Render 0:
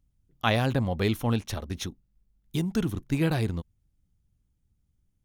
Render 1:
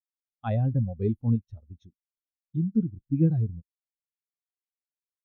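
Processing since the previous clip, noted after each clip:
every bin expanded away from the loudest bin 2.5 to 1
level −4 dB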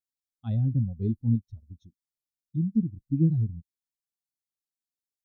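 flat-topped bell 1,100 Hz −16 dB 2.9 octaves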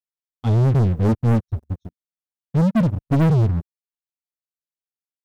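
leveller curve on the samples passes 5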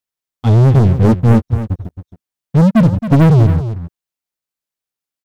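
single-tap delay 270 ms −11.5 dB
level +7.5 dB

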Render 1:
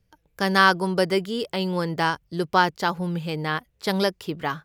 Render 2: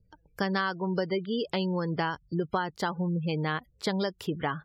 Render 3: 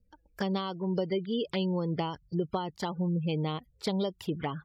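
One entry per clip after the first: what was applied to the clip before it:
gate on every frequency bin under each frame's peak −25 dB strong; low-shelf EQ 200 Hz +3.5 dB; downward compressor 12 to 1, threshold −25 dBFS, peak gain reduction 14.5 dB
flanger swept by the level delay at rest 3.9 ms, full sweep at −25.5 dBFS

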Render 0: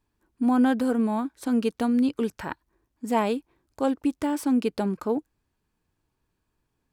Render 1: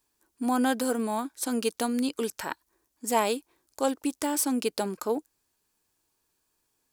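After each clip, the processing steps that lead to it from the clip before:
bass and treble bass −12 dB, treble +13 dB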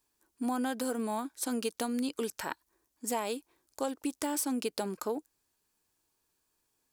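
downward compressor 6 to 1, threshold −26 dBFS, peak gain reduction 8 dB
level −2.5 dB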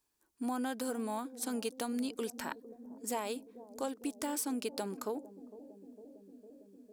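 bucket-brigade delay 454 ms, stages 2,048, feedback 80%, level −15.5 dB
level −3.5 dB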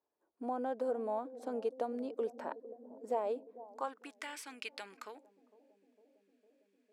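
band-pass filter sweep 570 Hz → 2,200 Hz, 0:03.46–0:04.27
level +7 dB

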